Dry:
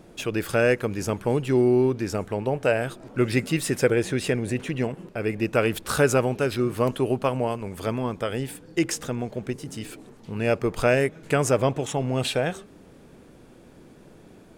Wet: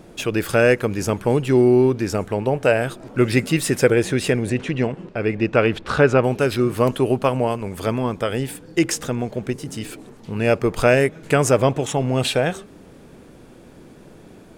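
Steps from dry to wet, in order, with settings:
0:04.49–0:06.23: low-pass filter 6,900 Hz → 2,900 Hz 12 dB per octave
level +5 dB

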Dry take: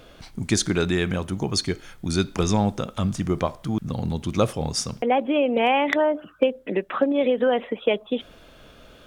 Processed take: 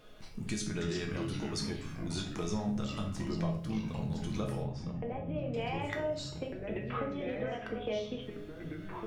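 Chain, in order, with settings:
downward compressor, threshold −24 dBFS, peak gain reduction 10 dB
tuned comb filter 210 Hz, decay 0.4 s, harmonics all, mix 80%
delay with pitch and tempo change per echo 194 ms, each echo −4 semitones, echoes 3, each echo −6 dB
0:04.63–0:05.54: head-to-tape spacing loss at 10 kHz 33 dB
rectangular room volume 62 cubic metres, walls mixed, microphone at 0.52 metres

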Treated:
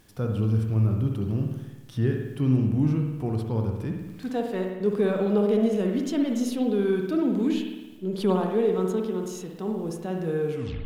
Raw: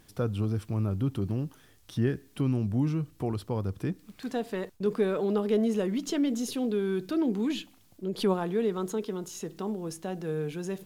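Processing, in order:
turntable brake at the end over 0.34 s
harmonic and percussive parts rebalanced percussive −7 dB
spring reverb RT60 1.1 s, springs 54 ms, chirp 65 ms, DRR 2.5 dB
level +3.5 dB

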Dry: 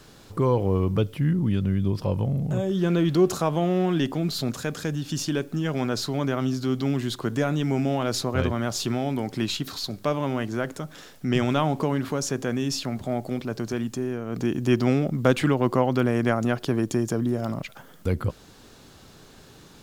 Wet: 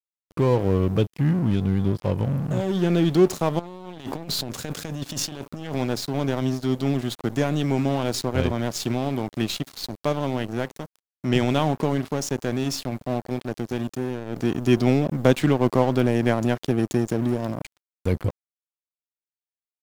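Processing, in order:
dynamic equaliser 1,300 Hz, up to −7 dB, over −45 dBFS, Q 2.4
0:03.59–0:05.76: compressor whose output falls as the input rises −31 dBFS, ratio −1
dead-zone distortion −34.5 dBFS
level +3.5 dB

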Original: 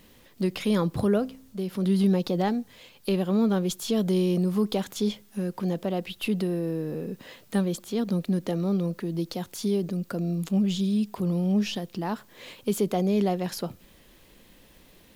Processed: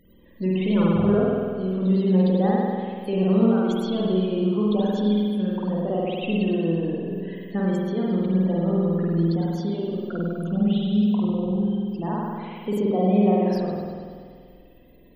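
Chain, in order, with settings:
dynamic equaliser 8,500 Hz, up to −6 dB, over −54 dBFS, Q 0.93
0:11.46–0:11.88: resonances in every octave G, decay 0.19 s
spectral peaks only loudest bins 32
spring reverb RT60 2 s, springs 48 ms, chirp 65 ms, DRR −5.5 dB
level −2 dB

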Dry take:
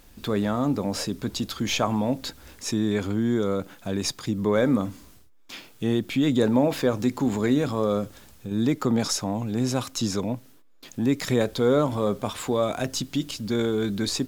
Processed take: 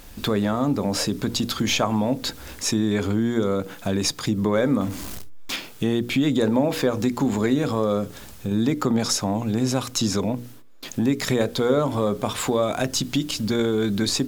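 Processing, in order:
0:04.81–0:05.56: converter with a step at zero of −38.5 dBFS
mains-hum notches 60/120/180/240/300/360/420/480 Hz
downward compressor 2 to 1, threshold −32 dBFS, peak gain reduction 9.5 dB
level +9 dB

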